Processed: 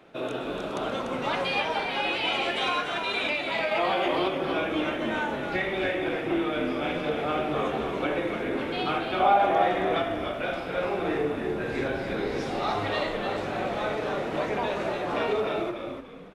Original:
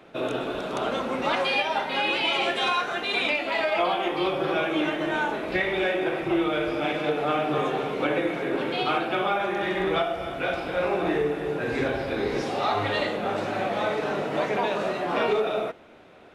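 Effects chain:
0:09.20–0:09.68: parametric band 740 Hz +13.5 dB 0.68 octaves
echo with shifted repeats 293 ms, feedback 32%, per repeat −81 Hz, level −6 dB
0:03.71–0:04.28: envelope flattener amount 70%
level −3.5 dB

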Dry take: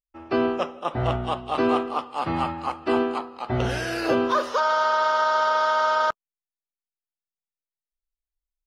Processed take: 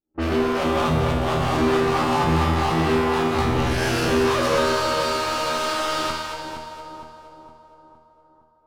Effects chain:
peak hold with a rise ahead of every peak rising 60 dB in 0.43 s
noise gate with hold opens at −30 dBFS
bass and treble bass +9 dB, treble +1 dB
in parallel at 0 dB: compressor whose output falls as the input rises −30 dBFS, ratio −0.5
on the sum: leveller curve on the samples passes 5
tuned comb filter 79 Hz, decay 0.95 s, harmonics all, mix 90%
low-pass that shuts in the quiet parts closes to 490 Hz, open at −21.5 dBFS
on a send: echo with a time of its own for lows and highs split 990 Hz, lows 462 ms, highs 234 ms, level −6 dB

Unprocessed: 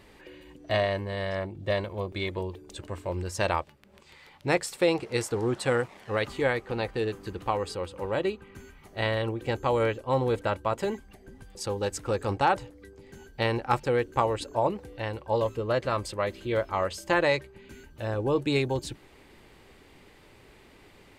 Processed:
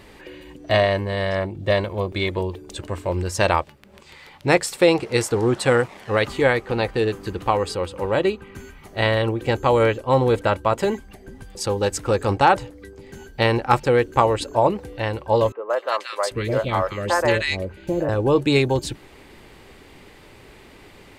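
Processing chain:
0:15.52–0:18.09: three-band delay without the direct sound mids, highs, lows 180/790 ms, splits 480/1,700 Hz
level +8 dB

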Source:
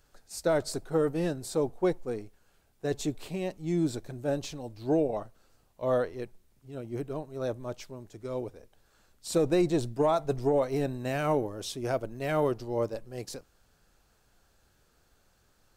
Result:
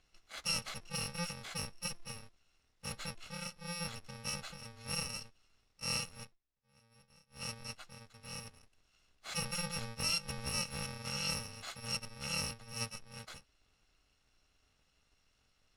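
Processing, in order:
samples in bit-reversed order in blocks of 128 samples
low-pass filter 4,700 Hz 12 dB per octave
low-shelf EQ 460 Hz −7 dB
0:06.23–0:07.42: duck −19 dB, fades 0.13 s
0:12.51–0:12.91: multiband upward and downward expander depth 40%

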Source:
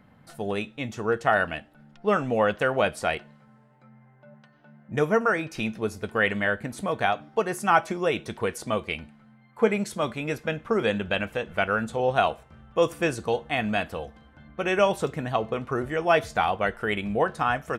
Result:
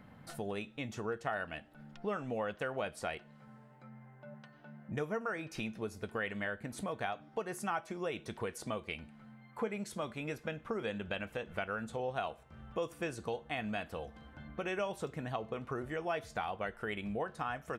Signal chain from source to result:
downward compressor 2.5 to 1, threshold −41 dBFS, peak gain reduction 17.5 dB

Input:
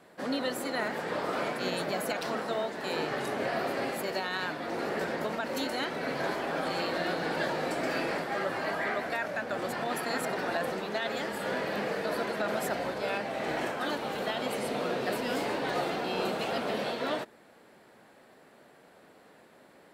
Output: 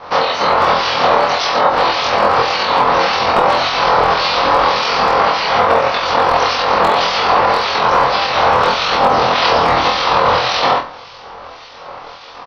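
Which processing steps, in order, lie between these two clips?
ceiling on every frequency bin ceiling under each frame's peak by 24 dB
Butterworth low-pass 5,900 Hz 96 dB per octave
flat-topped bell 770 Hz +12 dB
notch filter 620 Hz, Q 12
downward compressor 16 to 1, threshold −28 dBFS, peak gain reduction 10 dB
two-band tremolo in antiphase 1.1 Hz, depth 70%, crossover 2,000 Hz
tempo change 1.6×
wave folding −23.5 dBFS
multi-voice chorus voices 4, 1.2 Hz, delay 23 ms, depth 3 ms
flutter between parallel walls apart 4.1 metres, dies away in 0.25 s
on a send at −15 dB: convolution reverb RT60 0.65 s, pre-delay 7 ms
on the sum: boost into a limiter +25.5 dB
level −1 dB

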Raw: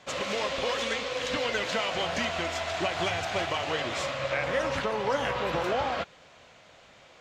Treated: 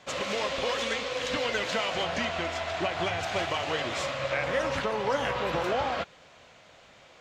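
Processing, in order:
0:02.03–0:03.19: high-shelf EQ 8,400 Hz → 4,800 Hz −9 dB

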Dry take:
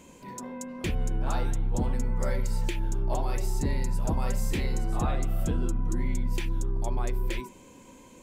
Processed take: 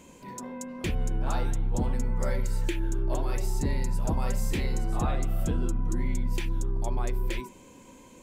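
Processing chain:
0:02.45–0:03.32: thirty-one-band graphic EQ 200 Hz −10 dB, 315 Hz +8 dB, 800 Hz −8 dB, 1,600 Hz +5 dB, 5,000 Hz −4 dB

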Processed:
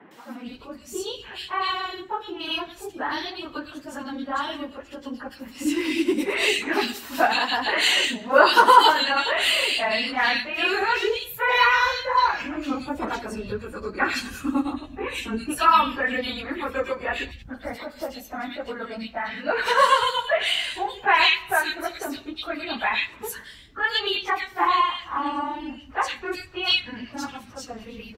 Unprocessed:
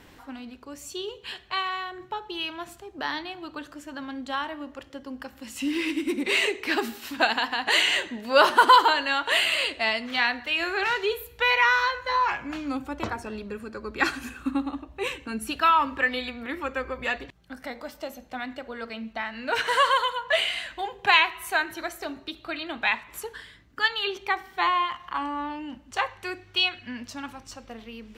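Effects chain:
random phases in long frames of 50 ms
three-band delay without the direct sound mids, highs, lows 110/450 ms, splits 160/2,100 Hz
level +4 dB

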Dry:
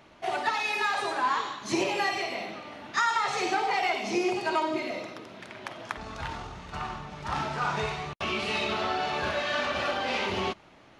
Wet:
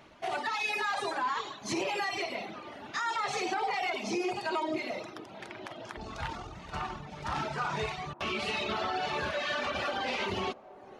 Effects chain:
reverb reduction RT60 0.77 s
brickwall limiter −23.5 dBFS, peak gain reduction 10.5 dB
delay with a band-pass on its return 443 ms, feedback 84%, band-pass 460 Hz, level −20 dB

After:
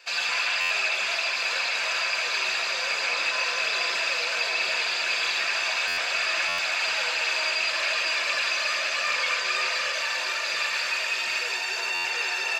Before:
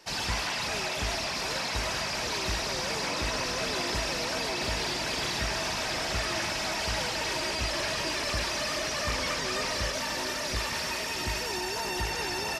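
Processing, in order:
high-pass filter 940 Hz 12 dB per octave
high-shelf EQ 12,000 Hz +9 dB
convolution reverb RT60 0.85 s, pre-delay 3 ms, DRR 5 dB
buffer that repeats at 0:00.60/0:05.87/0:06.48/0:11.94, samples 512
level −3 dB

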